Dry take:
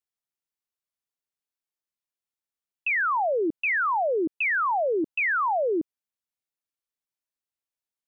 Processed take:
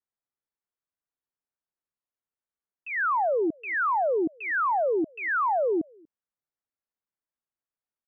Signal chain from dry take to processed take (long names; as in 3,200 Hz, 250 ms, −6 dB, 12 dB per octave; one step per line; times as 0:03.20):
low-pass filter 1,800 Hz 24 dB per octave
slap from a distant wall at 41 metres, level −29 dB